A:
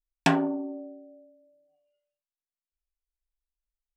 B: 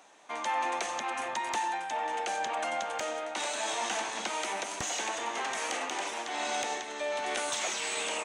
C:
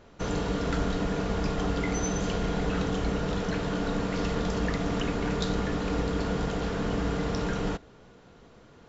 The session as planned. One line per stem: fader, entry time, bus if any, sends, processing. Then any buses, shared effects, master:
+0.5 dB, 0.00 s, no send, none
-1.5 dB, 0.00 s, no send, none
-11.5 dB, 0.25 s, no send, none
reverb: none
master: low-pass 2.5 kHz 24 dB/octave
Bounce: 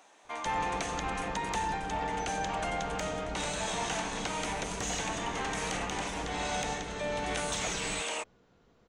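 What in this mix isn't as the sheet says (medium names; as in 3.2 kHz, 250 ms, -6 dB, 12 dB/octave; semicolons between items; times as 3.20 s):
stem A: muted; master: missing low-pass 2.5 kHz 24 dB/octave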